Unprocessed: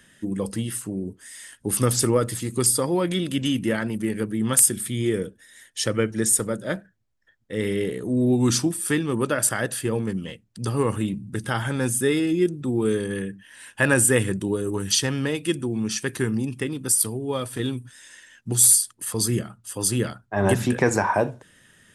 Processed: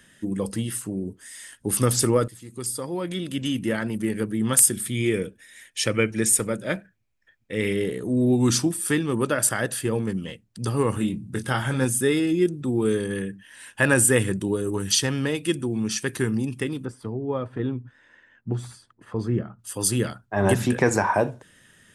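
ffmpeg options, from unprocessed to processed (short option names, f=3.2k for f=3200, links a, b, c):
-filter_complex "[0:a]asettb=1/sr,asplit=3[a][b][c];[a]atrim=end=4.954[d];[b]atrim=start=4.95:end=7.73,asetpts=PTS-STARTPTS,afade=t=in:d=0.004:c=qsin,afade=t=out:st=2.776:d=0.004:c=qsin,equalizer=f=2.4k:t=o:w=0.33:g=11.5[e];[c]atrim=start=7.726[f];[d][e]acrossfade=d=0.004:c1=hsin:c2=qsin[g];[g][f]acrossfade=d=0.004:c1=qsin:c2=hsin,asettb=1/sr,asplit=3[h][i][j];[h]atrim=end=10.944[k];[i]atrim=start=10.94:end=11.85,asetpts=PTS-STARTPTS,afade=t=in:d=0.004:c=qsin,afade=t=out:st=0.906:d=0.004:c=qsin,asplit=2[l][m];[m]adelay=23,volume=-7dB[n];[l][n]amix=inputs=2:normalize=0,atrim=end_sample=40131[o];[j]atrim=start=11.846[p];[k][o]acrossfade=d=0.004:c1=hsin:c2=qsin[q];[q][p]acrossfade=d=0.004:c1=qsin:c2=hsin,asettb=1/sr,asplit=3[r][s][t];[r]atrim=end=16.854[u];[s]atrim=start=16.85:end=19.59,asetpts=PTS-STARTPTS,afade=t=in:d=0.004:c=qsin,afade=t=out:st=2.736:d=0.004:c=qsin,lowpass=1.4k[v];[t]atrim=start=19.586[w];[u][v]acrossfade=d=0.004:c1=hsin:c2=qsin[x];[x][w]acrossfade=d=0.004:c1=qsin:c2=hsin,asplit=2[y][z];[y]atrim=end=2.28,asetpts=PTS-STARTPTS,afade=t=out:st=2.276:d=0.004:c=hsin:silence=0.133352[aa];[z]atrim=start=2.28,asetpts=PTS-STARTPTS,afade=t=in:d=1.75:silence=0.133352[ab];[aa][ab]concat=n=2:v=0:a=1"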